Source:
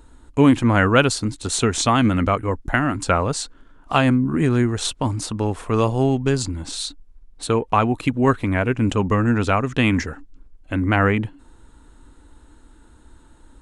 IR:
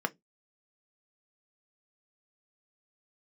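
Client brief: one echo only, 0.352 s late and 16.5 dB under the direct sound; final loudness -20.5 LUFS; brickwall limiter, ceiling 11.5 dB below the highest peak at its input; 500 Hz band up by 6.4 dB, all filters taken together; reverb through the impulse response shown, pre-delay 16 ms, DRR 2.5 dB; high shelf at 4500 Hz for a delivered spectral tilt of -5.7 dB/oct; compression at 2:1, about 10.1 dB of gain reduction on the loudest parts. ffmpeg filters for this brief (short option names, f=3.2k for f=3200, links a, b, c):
-filter_complex "[0:a]equalizer=f=500:t=o:g=8,highshelf=f=4.5k:g=-6.5,acompressor=threshold=-25dB:ratio=2,alimiter=limit=-18.5dB:level=0:latency=1,aecho=1:1:352:0.15,asplit=2[a][b];[1:a]atrim=start_sample=2205,adelay=16[c];[b][c]afir=irnorm=-1:irlink=0,volume=-9dB[d];[a][d]amix=inputs=2:normalize=0,volume=6.5dB"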